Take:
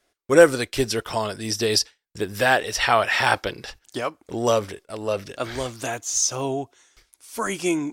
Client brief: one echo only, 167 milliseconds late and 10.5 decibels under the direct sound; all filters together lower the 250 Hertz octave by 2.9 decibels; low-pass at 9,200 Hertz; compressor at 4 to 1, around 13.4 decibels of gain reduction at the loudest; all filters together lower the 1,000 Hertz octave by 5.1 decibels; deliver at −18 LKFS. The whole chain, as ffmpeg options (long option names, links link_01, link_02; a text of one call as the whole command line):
ffmpeg -i in.wav -af "lowpass=9200,equalizer=frequency=250:width_type=o:gain=-3.5,equalizer=frequency=1000:width_type=o:gain=-7,acompressor=threshold=-26dB:ratio=4,aecho=1:1:167:0.299,volume=12.5dB" out.wav